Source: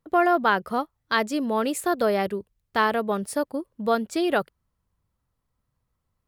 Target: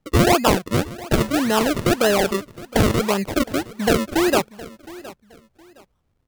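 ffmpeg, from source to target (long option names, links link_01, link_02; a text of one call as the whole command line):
ffmpeg -i in.wav -filter_complex "[0:a]asplit=2[link_01][link_02];[link_02]acompressor=threshold=-29dB:ratio=6,volume=-2dB[link_03];[link_01][link_03]amix=inputs=2:normalize=0,acrusher=samples=38:mix=1:aa=0.000001:lfo=1:lforange=38:lforate=1.8,aecho=1:1:715|1430:0.112|0.0292,volume=3dB" out.wav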